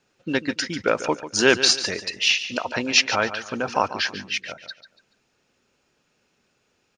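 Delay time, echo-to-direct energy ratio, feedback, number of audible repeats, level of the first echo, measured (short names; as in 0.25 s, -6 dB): 0.143 s, -12.0 dB, 31%, 3, -12.5 dB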